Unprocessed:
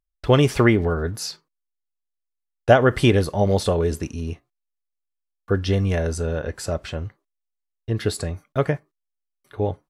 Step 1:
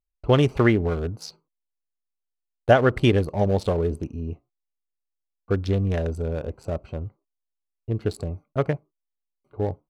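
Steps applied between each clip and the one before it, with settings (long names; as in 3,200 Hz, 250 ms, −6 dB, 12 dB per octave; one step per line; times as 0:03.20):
adaptive Wiener filter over 25 samples
level −2 dB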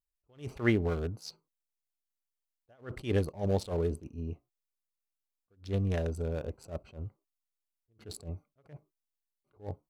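high-shelf EQ 5,100 Hz +7.5 dB
level that may rise only so fast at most 220 dB per second
level −6.5 dB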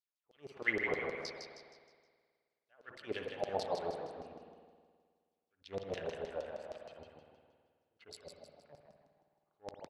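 auto-filter band-pass saw down 6.4 Hz 510–5,400 Hz
echo with shifted repeats 157 ms, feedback 42%, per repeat +64 Hz, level −5.5 dB
spring reverb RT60 1.8 s, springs 53 ms, chirp 70 ms, DRR 4.5 dB
level +3 dB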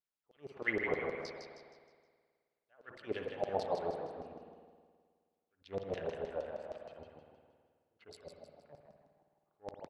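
high-shelf EQ 2,400 Hz −9 dB
level +2 dB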